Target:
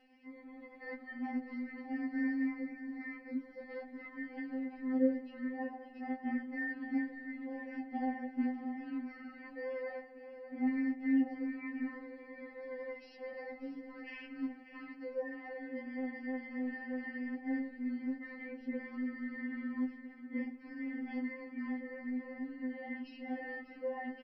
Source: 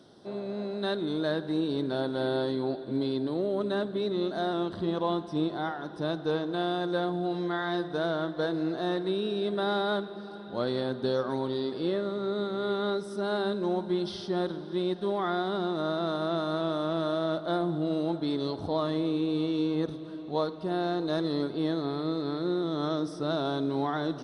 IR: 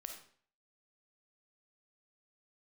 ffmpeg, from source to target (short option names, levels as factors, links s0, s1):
-af "asetrate=22696,aresample=44100,atempo=1.94306,aecho=1:1:592:0.237,afftfilt=real='re*3.46*eq(mod(b,12),0)':imag='im*3.46*eq(mod(b,12),0)':win_size=2048:overlap=0.75,volume=0.668"